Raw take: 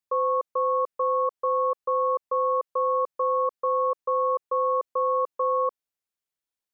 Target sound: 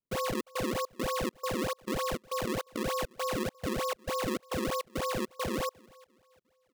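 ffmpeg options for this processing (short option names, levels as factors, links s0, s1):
-filter_complex "[0:a]asplit=2[s0][s1];[s1]adelay=351,lowpass=f=850:p=1,volume=0.0891,asplit=2[s2][s3];[s3]adelay=351,lowpass=f=850:p=1,volume=0.48,asplit=2[s4][s5];[s5]adelay=351,lowpass=f=850:p=1,volume=0.48[s6];[s0][s2][s4][s6]amix=inputs=4:normalize=0,acrusher=samples=34:mix=1:aa=0.000001:lfo=1:lforange=54.4:lforate=3.3,volume=0.398"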